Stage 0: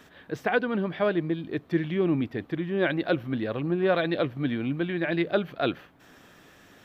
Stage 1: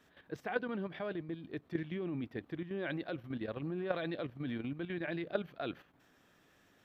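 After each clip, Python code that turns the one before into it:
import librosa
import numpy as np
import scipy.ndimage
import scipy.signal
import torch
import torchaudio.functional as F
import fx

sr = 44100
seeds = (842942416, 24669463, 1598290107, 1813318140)

y = fx.level_steps(x, sr, step_db=10)
y = y * 10.0 ** (-7.5 / 20.0)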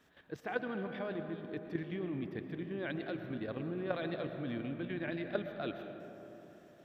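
y = fx.rev_freeverb(x, sr, rt60_s=3.8, hf_ratio=0.3, predelay_ms=75, drr_db=6.5)
y = y * 10.0 ** (-1.0 / 20.0)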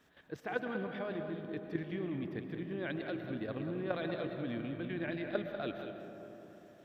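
y = x + 10.0 ** (-9.5 / 20.0) * np.pad(x, (int(193 * sr / 1000.0), 0))[:len(x)]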